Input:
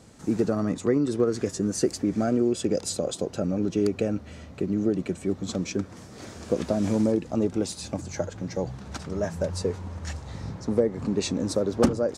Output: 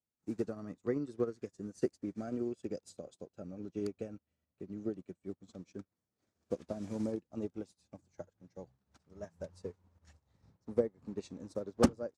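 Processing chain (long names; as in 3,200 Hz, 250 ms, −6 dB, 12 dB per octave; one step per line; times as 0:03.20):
expander for the loud parts 2.5 to 1, over −44 dBFS
level −3.5 dB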